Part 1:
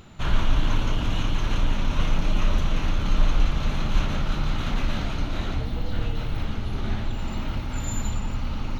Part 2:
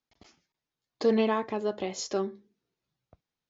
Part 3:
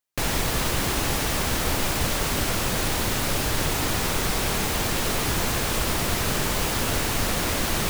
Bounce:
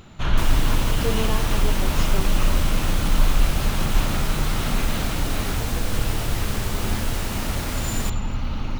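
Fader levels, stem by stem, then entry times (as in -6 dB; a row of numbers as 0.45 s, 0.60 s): +2.0 dB, -3.5 dB, -6.0 dB; 0.00 s, 0.00 s, 0.20 s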